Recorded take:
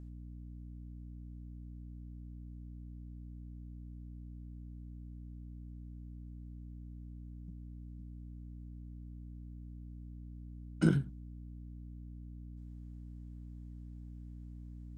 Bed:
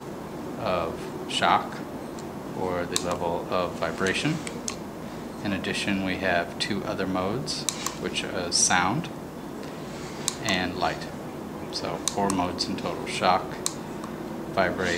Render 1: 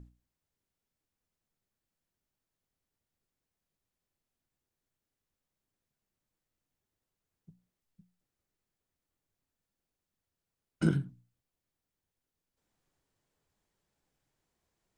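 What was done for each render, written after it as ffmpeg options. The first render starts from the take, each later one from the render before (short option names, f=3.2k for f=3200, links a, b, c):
-af "bandreject=f=60:t=h:w=6,bandreject=f=120:t=h:w=6,bandreject=f=180:t=h:w=6,bandreject=f=240:t=h:w=6,bandreject=f=300:t=h:w=6"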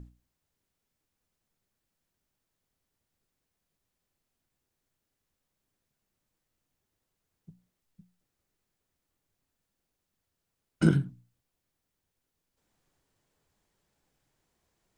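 -af "volume=5dB"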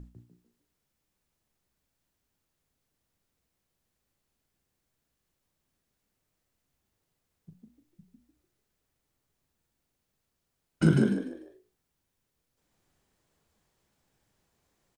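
-filter_complex "[0:a]asplit=2[a][b];[b]adelay=38,volume=-10.5dB[c];[a][c]amix=inputs=2:normalize=0,asplit=5[d][e][f][g][h];[e]adelay=148,afreqshift=59,volume=-3.5dB[i];[f]adelay=296,afreqshift=118,volume=-14dB[j];[g]adelay=444,afreqshift=177,volume=-24.4dB[k];[h]adelay=592,afreqshift=236,volume=-34.9dB[l];[d][i][j][k][l]amix=inputs=5:normalize=0"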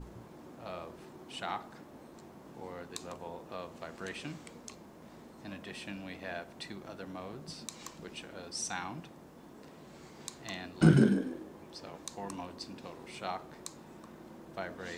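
-filter_complex "[1:a]volume=-16.5dB[a];[0:a][a]amix=inputs=2:normalize=0"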